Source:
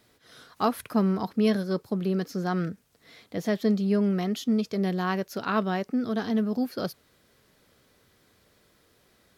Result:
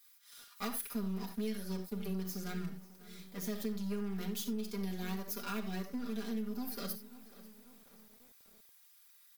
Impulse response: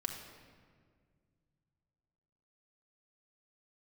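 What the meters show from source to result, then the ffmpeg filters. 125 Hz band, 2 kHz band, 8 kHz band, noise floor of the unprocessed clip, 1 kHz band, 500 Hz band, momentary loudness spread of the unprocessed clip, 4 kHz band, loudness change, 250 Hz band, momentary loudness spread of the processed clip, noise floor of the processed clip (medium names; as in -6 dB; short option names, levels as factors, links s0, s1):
-11.5 dB, -12.0 dB, +1.0 dB, -64 dBFS, -16.0 dB, -15.0 dB, 6 LU, -7.5 dB, -12.0 dB, -12.5 dB, 20 LU, -63 dBFS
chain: -filter_complex "[0:a]aeval=exprs='if(lt(val(0),0),0.251*val(0),val(0))':c=same,aemphasis=mode=production:type=bsi,aecho=1:1:5:0.82,asplit=2[s0][s1];[s1]adelay=543,lowpass=f=4800:p=1,volume=0.119,asplit=2[s2][s3];[s3]adelay=543,lowpass=f=4800:p=1,volume=0.51,asplit=2[s4][s5];[s5]adelay=543,lowpass=f=4800:p=1,volume=0.51,asplit=2[s6][s7];[s7]adelay=543,lowpass=f=4800:p=1,volume=0.51[s8];[s2][s4][s6][s8]amix=inputs=4:normalize=0[s9];[s0][s9]amix=inputs=2:normalize=0[s10];[1:a]atrim=start_sample=2205,atrim=end_sample=4410[s11];[s10][s11]afir=irnorm=-1:irlink=0,acrossover=split=620[s12][s13];[s12]aeval=exprs='val(0)*gte(abs(val(0)),0.00178)':c=same[s14];[s13]highpass=f=1300:p=1[s15];[s14][s15]amix=inputs=2:normalize=0,acompressor=threshold=0.0447:ratio=6,volume=0.473"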